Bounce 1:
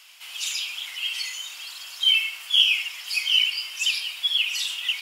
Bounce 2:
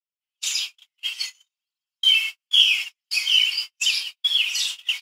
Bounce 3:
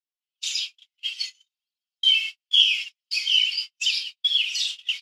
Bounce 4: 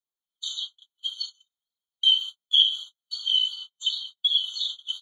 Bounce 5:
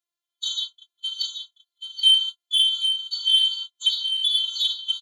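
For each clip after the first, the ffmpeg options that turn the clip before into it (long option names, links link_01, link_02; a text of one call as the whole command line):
ffmpeg -i in.wav -af "adynamicequalizer=threshold=0.0141:dfrequency=5700:dqfactor=0.97:tfrequency=5700:tqfactor=0.97:attack=5:release=100:ratio=0.375:range=3:mode=boostabove:tftype=bell,agate=range=-54dB:threshold=-26dB:ratio=16:detection=peak" out.wav
ffmpeg -i in.wav -af "bandpass=frequency=3900:width_type=q:width=1.3:csg=0" out.wav
ffmpeg -i in.wav -filter_complex "[0:a]acrossover=split=2500|3600|4500[link_01][link_02][link_03][link_04];[link_04]acompressor=threshold=-46dB:ratio=6[link_05];[link_01][link_02][link_03][link_05]amix=inputs=4:normalize=0,afftfilt=real='re*eq(mod(floor(b*sr/1024/1500),2),0)':imag='im*eq(mod(floor(b*sr/1024/1500),2),0)':win_size=1024:overlap=0.75" out.wav
ffmpeg -i in.wav -filter_complex "[0:a]asplit=2[link_01][link_02];[link_02]highpass=frequency=720:poles=1,volume=14dB,asoftclip=type=tanh:threshold=-6dB[link_03];[link_01][link_03]amix=inputs=2:normalize=0,lowpass=frequency=6400:poles=1,volume=-6dB,asplit=2[link_04][link_05];[link_05]aecho=0:1:781:0.447[link_06];[link_04][link_06]amix=inputs=2:normalize=0,afftfilt=real='hypot(re,im)*cos(PI*b)':imag='0':win_size=512:overlap=0.75" out.wav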